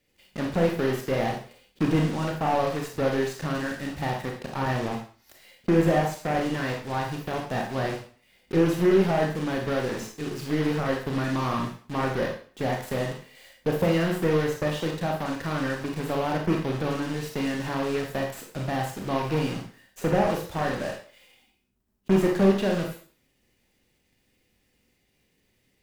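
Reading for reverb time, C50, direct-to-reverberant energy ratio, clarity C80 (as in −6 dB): 0.45 s, 5.5 dB, 1.0 dB, 10.0 dB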